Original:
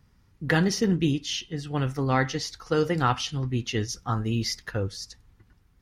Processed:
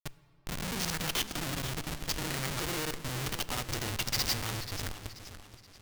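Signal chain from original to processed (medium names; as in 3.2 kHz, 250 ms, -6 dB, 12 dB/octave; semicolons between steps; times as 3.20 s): slices played last to first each 85 ms, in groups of 6; bass shelf 120 Hz +9 dB; hum notches 60/120/180 Hz; in parallel at -2 dB: compression 8:1, threshold -32 dBFS, peak gain reduction 16 dB; on the sum: granulator 100 ms; Schmitt trigger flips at -26.5 dBFS; tilt shelf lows -6.5 dB, about 1.4 kHz; on a send at -15 dB: reverberation RT60 2.5 s, pre-delay 4 ms; on the sum: modulated delay 481 ms, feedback 41%, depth 151 cents, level -12 dB; trim -5.5 dB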